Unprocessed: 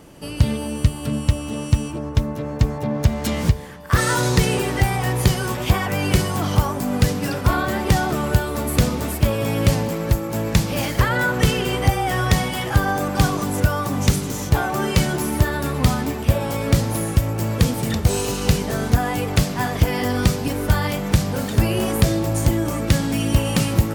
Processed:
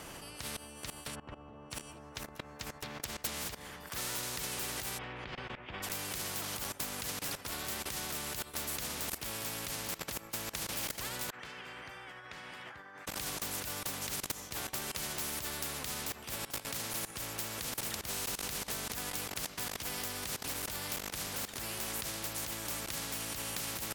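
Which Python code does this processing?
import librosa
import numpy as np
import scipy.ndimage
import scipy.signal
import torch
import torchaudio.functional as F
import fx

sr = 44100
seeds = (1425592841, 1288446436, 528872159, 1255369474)

y = fx.lowpass(x, sr, hz=1100.0, slope=12, at=(1.14, 1.7), fade=0.02)
y = fx.cheby1_lowpass(y, sr, hz=2200.0, order=3, at=(4.97, 5.82), fade=0.02)
y = fx.bandpass_q(y, sr, hz=1600.0, q=5.5, at=(11.3, 13.07))
y = fx.highpass(y, sr, hz=110.0, slope=12, at=(16.45, 17.15))
y = fx.low_shelf(y, sr, hz=270.0, db=5.5)
y = fx.level_steps(y, sr, step_db=22)
y = fx.spectral_comp(y, sr, ratio=4.0)
y = F.gain(torch.from_numpy(y), -6.5).numpy()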